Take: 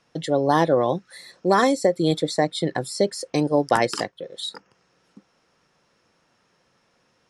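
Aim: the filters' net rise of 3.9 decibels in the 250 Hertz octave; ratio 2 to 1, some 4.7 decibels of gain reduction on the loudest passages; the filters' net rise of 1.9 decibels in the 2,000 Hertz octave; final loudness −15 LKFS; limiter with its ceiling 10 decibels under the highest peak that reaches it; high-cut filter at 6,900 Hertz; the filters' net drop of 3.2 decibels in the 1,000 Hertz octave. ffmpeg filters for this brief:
ffmpeg -i in.wav -af "lowpass=6900,equalizer=frequency=250:width_type=o:gain=5.5,equalizer=frequency=1000:width_type=o:gain=-5.5,equalizer=frequency=2000:width_type=o:gain=4,acompressor=threshold=-21dB:ratio=2,volume=14.5dB,alimiter=limit=-3.5dB:level=0:latency=1" out.wav

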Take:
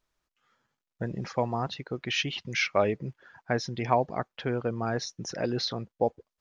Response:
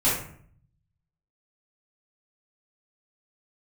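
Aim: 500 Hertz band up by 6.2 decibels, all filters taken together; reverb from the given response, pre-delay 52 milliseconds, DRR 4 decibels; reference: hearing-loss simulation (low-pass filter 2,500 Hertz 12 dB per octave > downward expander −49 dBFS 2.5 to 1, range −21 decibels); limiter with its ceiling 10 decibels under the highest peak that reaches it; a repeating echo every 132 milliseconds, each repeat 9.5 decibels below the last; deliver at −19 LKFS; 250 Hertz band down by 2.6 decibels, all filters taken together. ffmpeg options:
-filter_complex "[0:a]equalizer=frequency=250:width_type=o:gain=-7,equalizer=frequency=500:width_type=o:gain=9,alimiter=limit=-16.5dB:level=0:latency=1,aecho=1:1:132|264|396|528:0.335|0.111|0.0365|0.012,asplit=2[link_01][link_02];[1:a]atrim=start_sample=2205,adelay=52[link_03];[link_02][link_03]afir=irnorm=-1:irlink=0,volume=-18dB[link_04];[link_01][link_04]amix=inputs=2:normalize=0,lowpass=2500,agate=range=-21dB:threshold=-49dB:ratio=2.5,volume=9.5dB"

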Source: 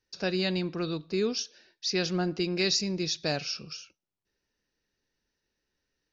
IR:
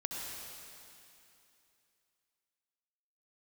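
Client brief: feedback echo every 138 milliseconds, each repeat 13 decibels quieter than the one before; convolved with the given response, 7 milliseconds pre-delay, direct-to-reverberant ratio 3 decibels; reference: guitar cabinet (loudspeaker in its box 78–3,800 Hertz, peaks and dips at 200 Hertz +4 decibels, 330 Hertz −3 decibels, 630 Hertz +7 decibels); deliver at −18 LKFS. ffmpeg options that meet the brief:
-filter_complex "[0:a]aecho=1:1:138|276|414:0.224|0.0493|0.0108,asplit=2[link_01][link_02];[1:a]atrim=start_sample=2205,adelay=7[link_03];[link_02][link_03]afir=irnorm=-1:irlink=0,volume=-5dB[link_04];[link_01][link_04]amix=inputs=2:normalize=0,highpass=78,equalizer=frequency=200:width_type=q:width=4:gain=4,equalizer=frequency=330:width_type=q:width=4:gain=-3,equalizer=frequency=630:width_type=q:width=4:gain=7,lowpass=frequency=3800:width=0.5412,lowpass=frequency=3800:width=1.3066,volume=11.5dB"

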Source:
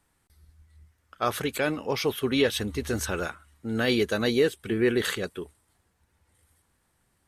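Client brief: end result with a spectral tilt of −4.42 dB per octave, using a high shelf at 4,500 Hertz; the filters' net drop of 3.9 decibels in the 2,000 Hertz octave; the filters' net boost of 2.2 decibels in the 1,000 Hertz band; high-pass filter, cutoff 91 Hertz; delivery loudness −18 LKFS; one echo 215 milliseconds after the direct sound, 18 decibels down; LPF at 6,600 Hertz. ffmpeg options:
ffmpeg -i in.wav -af "highpass=91,lowpass=6600,equalizer=frequency=1000:width_type=o:gain=5.5,equalizer=frequency=2000:width_type=o:gain=-6,highshelf=frequency=4500:gain=-7,aecho=1:1:215:0.126,volume=9.5dB" out.wav

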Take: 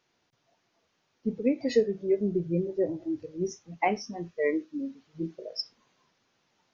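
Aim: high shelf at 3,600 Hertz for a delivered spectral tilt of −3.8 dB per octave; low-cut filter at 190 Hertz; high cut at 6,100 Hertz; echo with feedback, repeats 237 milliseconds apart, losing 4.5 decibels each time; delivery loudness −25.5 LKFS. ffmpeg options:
ffmpeg -i in.wav -af "highpass=190,lowpass=6100,highshelf=frequency=3600:gain=-8.5,aecho=1:1:237|474|711|948|1185|1422|1659|1896|2133:0.596|0.357|0.214|0.129|0.0772|0.0463|0.0278|0.0167|0.01,volume=4dB" out.wav

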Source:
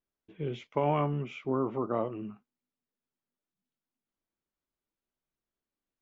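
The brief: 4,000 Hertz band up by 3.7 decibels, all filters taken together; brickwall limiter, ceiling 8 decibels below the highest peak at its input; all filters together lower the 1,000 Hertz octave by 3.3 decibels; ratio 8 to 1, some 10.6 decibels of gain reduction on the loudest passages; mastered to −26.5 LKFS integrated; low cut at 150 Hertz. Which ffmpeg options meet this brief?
ffmpeg -i in.wav -af "highpass=150,equalizer=frequency=1000:width_type=o:gain=-4.5,equalizer=frequency=4000:width_type=o:gain=6,acompressor=threshold=-36dB:ratio=8,volume=17dB,alimiter=limit=-16dB:level=0:latency=1" out.wav

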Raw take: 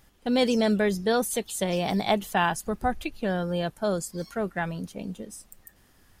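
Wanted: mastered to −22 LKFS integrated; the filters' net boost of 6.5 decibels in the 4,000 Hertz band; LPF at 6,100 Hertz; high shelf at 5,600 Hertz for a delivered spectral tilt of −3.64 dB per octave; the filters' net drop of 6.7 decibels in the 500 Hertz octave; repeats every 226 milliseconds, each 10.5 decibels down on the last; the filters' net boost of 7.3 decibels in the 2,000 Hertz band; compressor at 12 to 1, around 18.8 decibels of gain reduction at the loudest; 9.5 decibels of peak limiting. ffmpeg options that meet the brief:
ffmpeg -i in.wav -af "lowpass=6100,equalizer=frequency=500:width_type=o:gain=-9,equalizer=frequency=2000:width_type=o:gain=8.5,equalizer=frequency=4000:width_type=o:gain=4,highshelf=frequency=5600:gain=5,acompressor=threshold=-36dB:ratio=12,alimiter=level_in=6.5dB:limit=-24dB:level=0:latency=1,volume=-6.5dB,aecho=1:1:226|452|678:0.299|0.0896|0.0269,volume=19.5dB" out.wav

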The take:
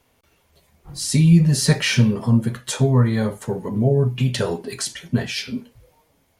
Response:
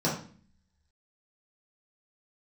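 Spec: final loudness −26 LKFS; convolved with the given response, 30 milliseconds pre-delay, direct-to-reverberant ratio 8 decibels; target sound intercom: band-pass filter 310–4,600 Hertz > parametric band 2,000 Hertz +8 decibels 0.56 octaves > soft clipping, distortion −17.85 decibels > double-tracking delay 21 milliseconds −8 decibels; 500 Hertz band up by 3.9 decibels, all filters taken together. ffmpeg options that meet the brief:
-filter_complex "[0:a]equalizer=frequency=500:width_type=o:gain=6,asplit=2[link_01][link_02];[1:a]atrim=start_sample=2205,adelay=30[link_03];[link_02][link_03]afir=irnorm=-1:irlink=0,volume=-18.5dB[link_04];[link_01][link_04]amix=inputs=2:normalize=0,highpass=310,lowpass=4600,equalizer=frequency=2000:width_type=o:width=0.56:gain=8,asoftclip=threshold=-10dB,asplit=2[link_05][link_06];[link_06]adelay=21,volume=-8dB[link_07];[link_05][link_07]amix=inputs=2:normalize=0,volume=-4dB"

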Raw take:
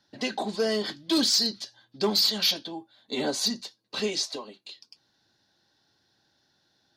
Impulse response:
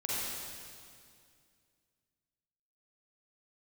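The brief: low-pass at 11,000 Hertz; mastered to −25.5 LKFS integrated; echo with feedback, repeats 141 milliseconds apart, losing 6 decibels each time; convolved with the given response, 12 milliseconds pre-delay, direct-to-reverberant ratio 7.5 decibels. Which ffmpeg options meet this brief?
-filter_complex "[0:a]lowpass=11000,aecho=1:1:141|282|423|564|705|846:0.501|0.251|0.125|0.0626|0.0313|0.0157,asplit=2[link_01][link_02];[1:a]atrim=start_sample=2205,adelay=12[link_03];[link_02][link_03]afir=irnorm=-1:irlink=0,volume=-13.5dB[link_04];[link_01][link_04]amix=inputs=2:normalize=0,volume=-0.5dB"

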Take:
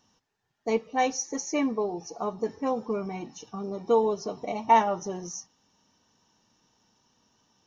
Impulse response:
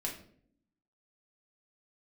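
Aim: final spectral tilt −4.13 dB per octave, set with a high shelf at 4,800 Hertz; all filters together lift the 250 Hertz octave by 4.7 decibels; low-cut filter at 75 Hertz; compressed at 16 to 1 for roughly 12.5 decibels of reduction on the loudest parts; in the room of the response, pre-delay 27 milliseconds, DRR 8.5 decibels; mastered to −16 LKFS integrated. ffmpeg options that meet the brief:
-filter_complex "[0:a]highpass=75,equalizer=frequency=250:width_type=o:gain=5.5,highshelf=frequency=4800:gain=8.5,acompressor=threshold=-25dB:ratio=16,asplit=2[link_01][link_02];[1:a]atrim=start_sample=2205,adelay=27[link_03];[link_02][link_03]afir=irnorm=-1:irlink=0,volume=-10dB[link_04];[link_01][link_04]amix=inputs=2:normalize=0,volume=15dB"

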